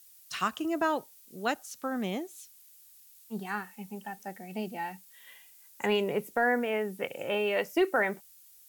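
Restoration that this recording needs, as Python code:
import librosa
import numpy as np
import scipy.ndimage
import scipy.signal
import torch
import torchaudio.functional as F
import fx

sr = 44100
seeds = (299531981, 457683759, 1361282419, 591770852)

y = fx.noise_reduce(x, sr, print_start_s=2.59, print_end_s=3.09, reduce_db=19.0)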